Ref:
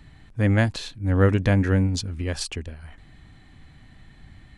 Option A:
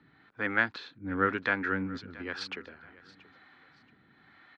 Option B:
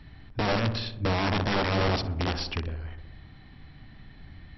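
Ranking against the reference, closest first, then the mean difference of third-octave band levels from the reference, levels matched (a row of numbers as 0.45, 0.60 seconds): A, B; 5.5, 8.5 decibels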